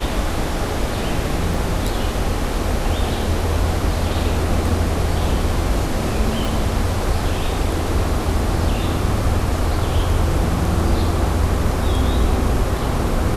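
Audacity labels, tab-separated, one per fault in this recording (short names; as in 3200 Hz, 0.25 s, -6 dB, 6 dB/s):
1.540000	1.540000	gap 2.6 ms
6.450000	6.450000	pop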